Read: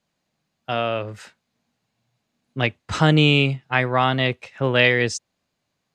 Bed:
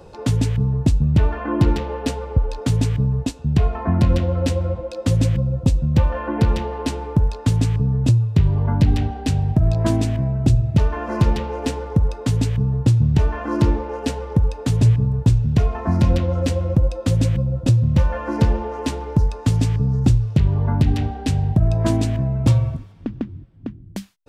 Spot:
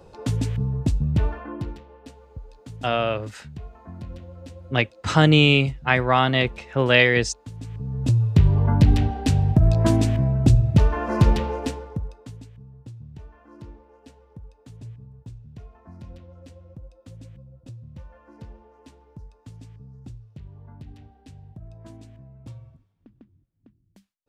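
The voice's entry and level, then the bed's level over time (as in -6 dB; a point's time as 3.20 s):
2.15 s, +0.5 dB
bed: 1.28 s -5.5 dB
1.84 s -21 dB
7.52 s -21 dB
8.27 s 0 dB
11.49 s 0 dB
12.51 s -25.5 dB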